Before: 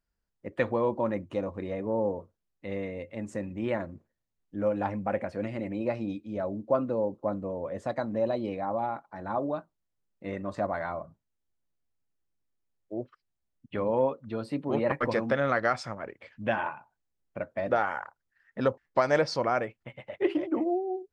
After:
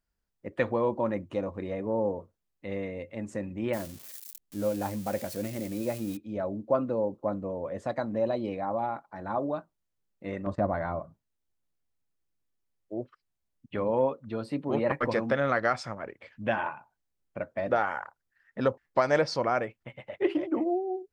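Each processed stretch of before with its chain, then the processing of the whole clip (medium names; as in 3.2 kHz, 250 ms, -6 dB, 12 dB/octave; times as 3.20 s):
3.73–6.17 s: zero-crossing glitches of -30.5 dBFS + peaking EQ 1.4 kHz -5 dB 2.2 oct
10.46–11.00 s: gate -45 dBFS, range -15 dB + tilt EQ -2.5 dB/octave
whole clip: none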